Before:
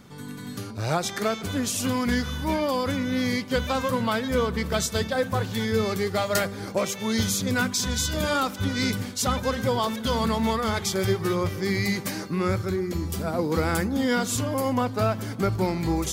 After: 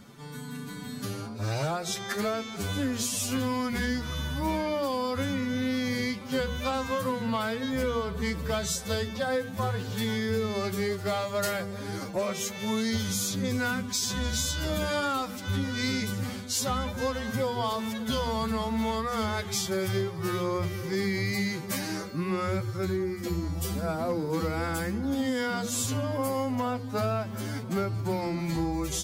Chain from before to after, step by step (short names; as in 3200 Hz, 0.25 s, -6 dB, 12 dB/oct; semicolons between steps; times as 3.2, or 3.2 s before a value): notches 60/120/180/240/300/360/420/480 Hz; compressor 6:1, threshold -25 dBFS, peak gain reduction 7 dB; hard clip -20 dBFS, distortion -28 dB; time stretch by phase-locked vocoder 1.8×; reverse echo 0.447 s -20.5 dB